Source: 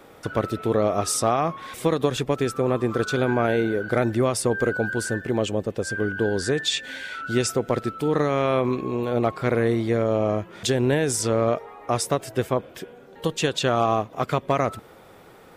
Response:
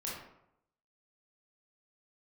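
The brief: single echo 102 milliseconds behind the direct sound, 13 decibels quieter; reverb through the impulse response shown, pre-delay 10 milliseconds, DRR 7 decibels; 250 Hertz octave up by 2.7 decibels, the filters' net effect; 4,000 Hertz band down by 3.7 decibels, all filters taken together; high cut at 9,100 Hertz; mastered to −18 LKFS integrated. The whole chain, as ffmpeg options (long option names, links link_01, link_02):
-filter_complex "[0:a]lowpass=9100,equalizer=frequency=250:width_type=o:gain=3.5,equalizer=frequency=4000:width_type=o:gain=-4.5,aecho=1:1:102:0.224,asplit=2[link_01][link_02];[1:a]atrim=start_sample=2205,adelay=10[link_03];[link_02][link_03]afir=irnorm=-1:irlink=0,volume=-8.5dB[link_04];[link_01][link_04]amix=inputs=2:normalize=0,volume=4dB"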